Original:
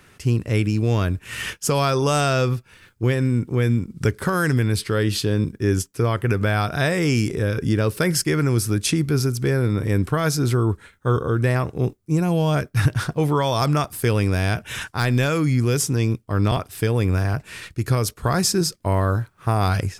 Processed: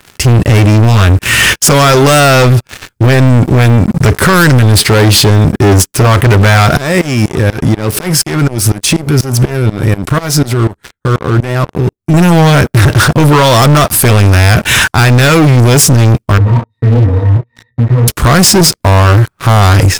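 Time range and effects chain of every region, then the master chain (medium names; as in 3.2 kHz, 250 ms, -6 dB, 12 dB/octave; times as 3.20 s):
6.77–12.14 s: compression 10:1, threshold -23 dBFS + sawtooth tremolo in dB swelling 4.1 Hz, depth 21 dB
16.38–18.08 s: treble shelf 3.8 kHz -10 dB + pitch-class resonator A#, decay 0.17 s + detune thickener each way 55 cents
whole clip: band-stop 460 Hz, Q 15; waveshaping leveller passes 5; loudness maximiser +11.5 dB; trim -2 dB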